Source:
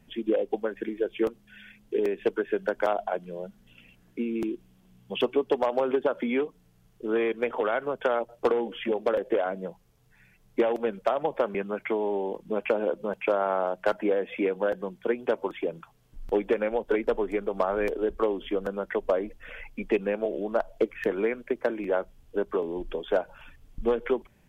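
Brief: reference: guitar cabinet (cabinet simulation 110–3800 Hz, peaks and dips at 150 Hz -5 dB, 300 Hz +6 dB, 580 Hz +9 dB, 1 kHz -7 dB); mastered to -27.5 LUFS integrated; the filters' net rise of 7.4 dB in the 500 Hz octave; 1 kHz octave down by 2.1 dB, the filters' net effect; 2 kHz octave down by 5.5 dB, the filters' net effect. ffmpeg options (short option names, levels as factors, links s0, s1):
-af "highpass=110,equalizer=f=150:t=q:w=4:g=-5,equalizer=f=300:t=q:w=4:g=6,equalizer=f=580:t=q:w=4:g=9,equalizer=f=1000:t=q:w=4:g=-7,lowpass=f=3800:w=0.5412,lowpass=f=3800:w=1.3066,equalizer=f=500:t=o:g=5,equalizer=f=1000:t=o:g=-5,equalizer=f=2000:t=o:g=-5.5,volume=0.531"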